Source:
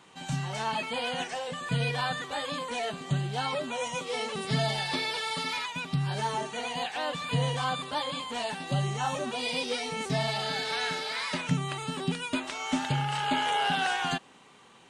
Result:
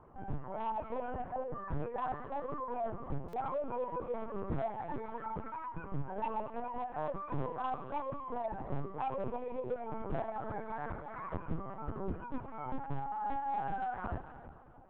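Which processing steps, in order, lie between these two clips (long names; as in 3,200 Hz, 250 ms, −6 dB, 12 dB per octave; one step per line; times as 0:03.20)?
low-pass filter 1,200 Hz 24 dB per octave
reverb reduction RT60 1.6 s
high-pass filter 75 Hz 6 dB per octave
low-shelf EQ 390 Hz +3 dB
in parallel at −0.5 dB: downward compressor 16 to 1, threshold −37 dBFS, peak gain reduction 18 dB
on the sum: gain into a clipping stage and back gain 25 dB
echo with a time of its own for lows and highs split 800 Hz, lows 324 ms, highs 223 ms, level −15.5 dB
on a send at −10 dB: convolution reverb RT60 1.8 s, pre-delay 51 ms
on the sum: linear-prediction vocoder at 8 kHz pitch kept
buffer that repeats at 0:03.28, samples 256, times 8
level −6 dB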